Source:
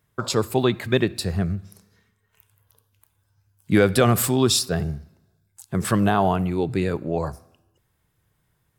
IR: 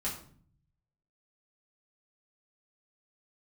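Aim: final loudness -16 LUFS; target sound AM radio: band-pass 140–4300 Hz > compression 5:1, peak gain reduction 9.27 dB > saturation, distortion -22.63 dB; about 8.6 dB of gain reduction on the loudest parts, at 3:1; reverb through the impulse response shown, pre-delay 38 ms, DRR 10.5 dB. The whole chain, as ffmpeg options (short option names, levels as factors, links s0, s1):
-filter_complex "[0:a]acompressor=threshold=0.0631:ratio=3,asplit=2[s0][s1];[1:a]atrim=start_sample=2205,adelay=38[s2];[s1][s2]afir=irnorm=-1:irlink=0,volume=0.2[s3];[s0][s3]amix=inputs=2:normalize=0,highpass=140,lowpass=4300,acompressor=threshold=0.0316:ratio=5,asoftclip=threshold=0.0794,volume=10"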